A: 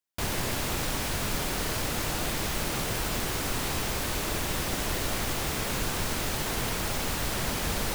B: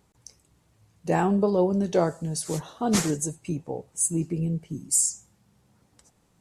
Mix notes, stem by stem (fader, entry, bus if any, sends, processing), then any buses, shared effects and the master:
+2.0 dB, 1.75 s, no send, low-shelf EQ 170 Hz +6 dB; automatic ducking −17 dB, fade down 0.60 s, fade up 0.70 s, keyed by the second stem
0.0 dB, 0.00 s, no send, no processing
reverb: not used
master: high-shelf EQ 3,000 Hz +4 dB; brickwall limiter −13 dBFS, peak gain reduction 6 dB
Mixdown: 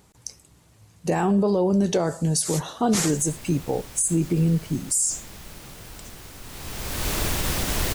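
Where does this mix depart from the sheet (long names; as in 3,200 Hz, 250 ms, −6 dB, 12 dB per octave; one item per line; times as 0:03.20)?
stem A: entry 1.75 s → 2.90 s
stem B 0.0 dB → +7.5 dB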